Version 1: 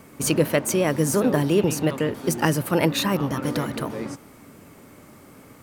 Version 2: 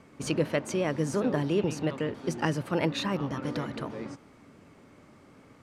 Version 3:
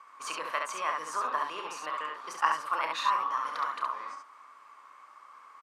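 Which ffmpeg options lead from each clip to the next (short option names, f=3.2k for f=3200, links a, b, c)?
-af "lowpass=5.5k,volume=-7dB"
-af "highpass=f=1.1k:t=q:w=9.3,aecho=1:1:32|69:0.335|0.668,volume=-4dB"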